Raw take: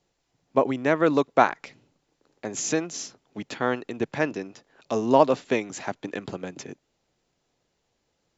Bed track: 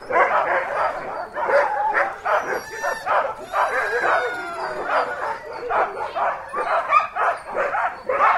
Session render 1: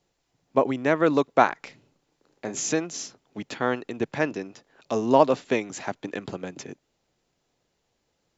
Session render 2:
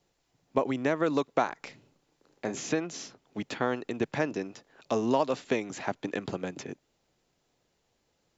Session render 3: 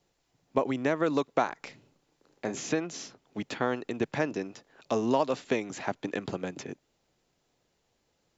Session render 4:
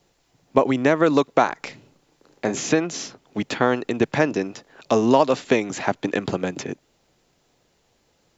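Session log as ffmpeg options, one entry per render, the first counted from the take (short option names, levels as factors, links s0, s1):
-filter_complex "[0:a]asettb=1/sr,asplit=3[s0][s1][s2];[s0]atrim=end=1.614[s3];[s1]atrim=start=1.61:end=2.67,asetpts=PTS-STARTPTS,afade=t=in:d=0.004:c=qsin,afade=t=out:st=1.056:d=0.004:c=qsin,asplit=2[s4][s5];[s5]adelay=33,volume=0.355[s6];[s4][s6]amix=inputs=2:normalize=0,atrim=end_sample=46746[s7];[s2]atrim=start=2.666[s8];[s3][s7]acrossfade=d=0.004:c1=hsin:c2=qsin[s9];[s9][s8]acrossfade=d=0.004:c1=qsin:c2=hsin"
-filter_complex "[0:a]acrossover=split=1200|4300[s0][s1][s2];[s0]acompressor=threshold=0.0631:ratio=4[s3];[s1]acompressor=threshold=0.0158:ratio=4[s4];[s2]acompressor=threshold=0.00447:ratio=4[s5];[s3][s4][s5]amix=inputs=3:normalize=0"
-af anull
-af "volume=2.99,alimiter=limit=0.891:level=0:latency=1"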